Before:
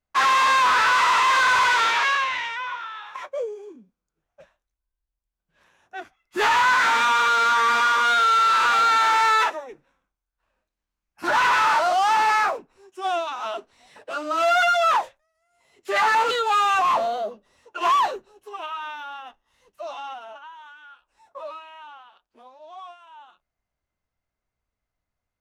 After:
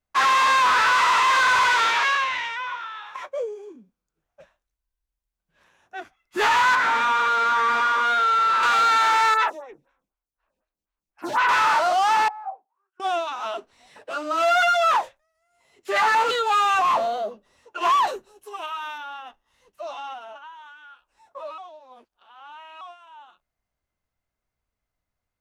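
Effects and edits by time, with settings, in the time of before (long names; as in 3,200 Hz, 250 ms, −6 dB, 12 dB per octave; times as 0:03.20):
0:06.75–0:08.63: high-shelf EQ 3,300 Hz −10.5 dB
0:09.34–0:11.49: phaser with staggered stages 4 Hz
0:12.28–0:13.00: envelope filter 770–1,700 Hz, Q 21, down, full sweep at −27 dBFS
0:18.07–0:18.98: parametric band 11,000 Hz +10.5 dB 1.4 octaves
0:21.58–0:22.81: reverse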